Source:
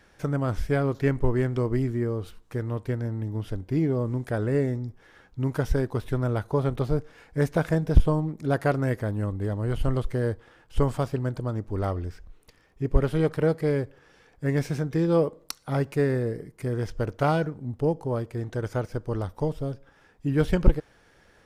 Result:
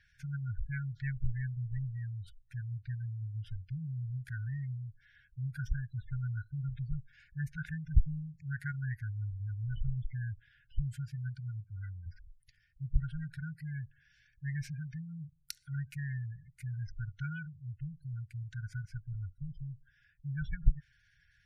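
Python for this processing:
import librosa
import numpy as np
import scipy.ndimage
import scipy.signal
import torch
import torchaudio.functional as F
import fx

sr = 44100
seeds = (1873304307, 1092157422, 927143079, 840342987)

y = fx.highpass(x, sr, hz=fx.line((10.81, 51.0), (12.05, 120.0)), slope=12, at=(10.81, 12.05), fade=0.02)
y = fx.spec_gate(y, sr, threshold_db=-25, keep='strong')
y = fx.brickwall_bandstop(y, sr, low_hz=160.0, high_hz=1400.0)
y = y * librosa.db_to_amplitude(-7.5)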